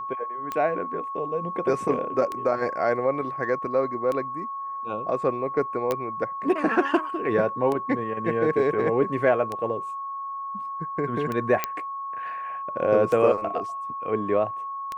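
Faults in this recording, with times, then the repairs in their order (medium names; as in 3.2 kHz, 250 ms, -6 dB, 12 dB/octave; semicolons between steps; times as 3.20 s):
tick 33 1/3 rpm -16 dBFS
whine 1.1 kHz -30 dBFS
5.91 s: pop -12 dBFS
11.64 s: pop -8 dBFS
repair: de-click; band-stop 1.1 kHz, Q 30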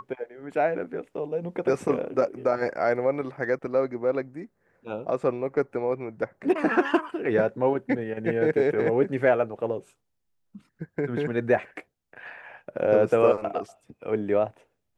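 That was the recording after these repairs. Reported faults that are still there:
nothing left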